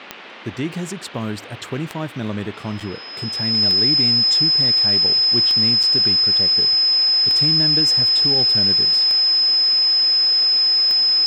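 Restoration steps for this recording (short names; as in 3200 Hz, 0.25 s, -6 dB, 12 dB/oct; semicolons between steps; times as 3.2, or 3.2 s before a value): de-click; notch 5100 Hz, Q 30; interpolate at 2.8/5.83, 5.8 ms; noise print and reduce 30 dB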